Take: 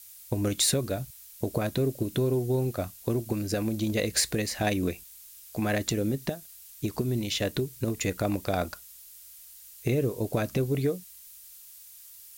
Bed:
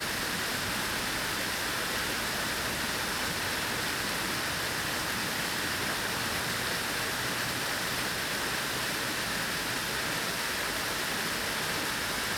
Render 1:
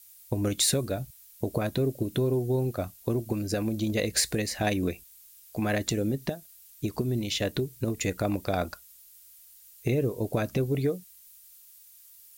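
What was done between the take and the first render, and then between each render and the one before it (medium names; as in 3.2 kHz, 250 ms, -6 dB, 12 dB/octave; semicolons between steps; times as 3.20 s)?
noise reduction 6 dB, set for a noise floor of -49 dBFS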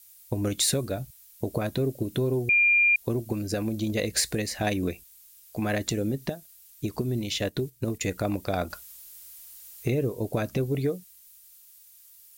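2.49–2.96 s: bleep 2.4 kHz -17 dBFS; 7.49–8.12 s: gate -41 dBFS, range -9 dB; 8.70–9.90 s: companding laws mixed up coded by mu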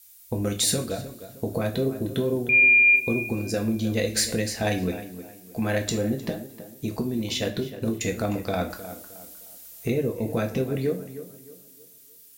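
tape echo 308 ms, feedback 38%, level -11.5 dB, low-pass 2 kHz; two-slope reverb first 0.38 s, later 2.8 s, from -28 dB, DRR 3.5 dB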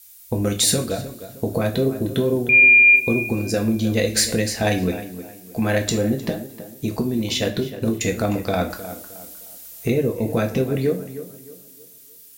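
trim +5 dB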